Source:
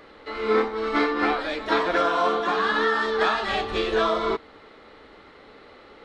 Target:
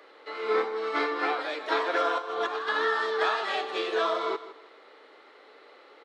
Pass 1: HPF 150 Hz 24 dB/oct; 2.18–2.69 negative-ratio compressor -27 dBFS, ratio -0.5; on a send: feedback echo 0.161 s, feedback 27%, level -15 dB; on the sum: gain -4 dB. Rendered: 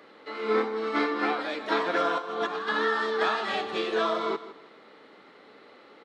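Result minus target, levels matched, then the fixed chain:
125 Hz band +17.0 dB
HPF 350 Hz 24 dB/oct; 2.18–2.69 negative-ratio compressor -27 dBFS, ratio -0.5; on a send: feedback echo 0.161 s, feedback 27%, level -15 dB; on the sum: gain -4 dB

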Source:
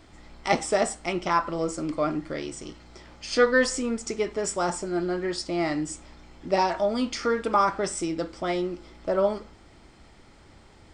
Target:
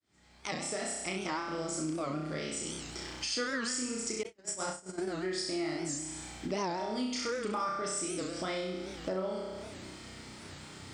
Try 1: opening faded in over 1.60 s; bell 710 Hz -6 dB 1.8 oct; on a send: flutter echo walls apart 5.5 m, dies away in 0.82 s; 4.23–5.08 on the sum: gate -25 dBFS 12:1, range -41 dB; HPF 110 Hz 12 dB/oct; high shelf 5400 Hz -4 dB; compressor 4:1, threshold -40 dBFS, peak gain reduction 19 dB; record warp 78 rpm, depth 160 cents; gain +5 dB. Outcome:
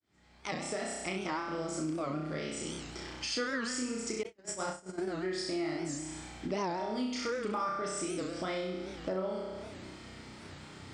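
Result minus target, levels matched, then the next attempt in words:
8000 Hz band -3.5 dB
opening faded in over 1.60 s; bell 710 Hz -6 dB 1.8 oct; on a send: flutter echo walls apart 5.5 m, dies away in 0.82 s; 4.23–5.08 on the sum: gate -25 dBFS 12:1, range -41 dB; HPF 110 Hz 12 dB/oct; high shelf 5400 Hz +5.5 dB; compressor 4:1, threshold -40 dBFS, peak gain reduction 19 dB; record warp 78 rpm, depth 160 cents; gain +5 dB

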